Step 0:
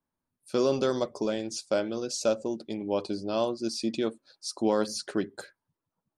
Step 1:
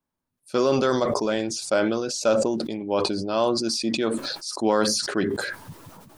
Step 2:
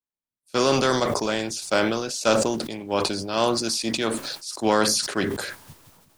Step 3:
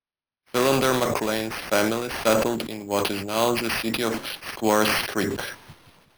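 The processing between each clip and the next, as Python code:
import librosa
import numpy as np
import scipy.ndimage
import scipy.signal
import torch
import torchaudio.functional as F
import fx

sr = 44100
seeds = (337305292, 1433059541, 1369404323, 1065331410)

y1 = fx.dynamic_eq(x, sr, hz=1400.0, q=0.79, threshold_db=-44.0, ratio=4.0, max_db=7)
y1 = fx.sustainer(y1, sr, db_per_s=31.0)
y1 = F.gain(torch.from_numpy(y1), 2.0).numpy()
y2 = fx.spec_flatten(y1, sr, power=0.67)
y2 = fx.band_widen(y2, sr, depth_pct=40)
y3 = np.repeat(y2[::6], 6)[:len(y2)]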